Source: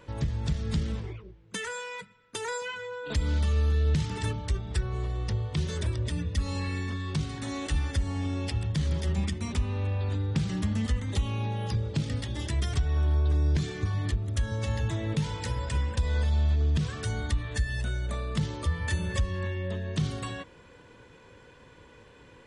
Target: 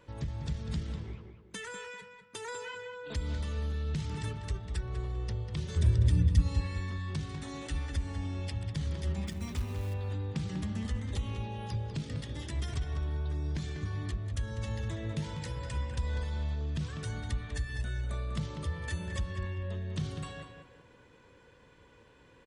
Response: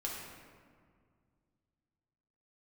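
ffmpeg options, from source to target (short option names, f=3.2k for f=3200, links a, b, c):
-filter_complex "[0:a]asettb=1/sr,asplit=3[a][b][c];[a]atrim=end=5.764[d];[b]atrim=start=5.76:end=6.41,asetpts=PTS-STARTPTS,afade=t=in:d=0.004:c=qsin,afade=t=out:st=0.646:d=0.004:c=qsin,bass=f=250:g=12,treble=f=4k:g=3[e];[c]atrim=start=6.406[f];[d][e]acrossfade=d=0.004:c1=hsin:c2=qsin[g];[g][f]acrossfade=d=0.004:c1=qsin:c2=hsin,asettb=1/sr,asplit=3[h][i][j];[h]atrim=end=9.274[k];[i]atrim=start=9.27:end=9.94,asetpts=PTS-STARTPTS,afade=t=in:d=0.004:c=qsin,afade=t=out:st=0.666:d=0.004:c=qsin,acrusher=bits=5:mode=log:mix=0:aa=0.000001[l];[j]atrim=start=9.936[m];[k][l]acrossfade=d=0.004:c1=hsin:c2=qsin[n];[n][m]acrossfade=d=0.004:c1=qsin:c2=hsin,asplit=2[o][p];[p]adelay=196,lowpass=f=3k:p=1,volume=-6.5dB,asplit=2[q][r];[r]adelay=196,lowpass=f=3k:p=1,volume=0.32,asplit=2[s][t];[t]adelay=196,lowpass=f=3k:p=1,volume=0.32,asplit=2[u][v];[v]adelay=196,lowpass=f=3k:p=1,volume=0.32[w];[o][q][s][u][w]amix=inputs=5:normalize=0,volume=-7dB"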